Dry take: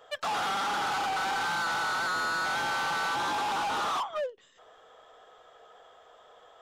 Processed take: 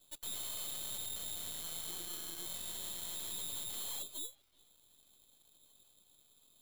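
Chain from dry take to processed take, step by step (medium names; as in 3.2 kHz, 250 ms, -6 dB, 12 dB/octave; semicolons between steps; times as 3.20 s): four frequency bands reordered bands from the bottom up 2413; careless resampling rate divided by 6×, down none, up hold; pre-emphasis filter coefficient 0.9; filtered feedback delay 379 ms, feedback 74%, low-pass 1.6 kHz, level -17.5 dB; half-wave rectifier; 1.88–2.46 s: peaking EQ 340 Hz +11 dB 0.27 oct; trim -6 dB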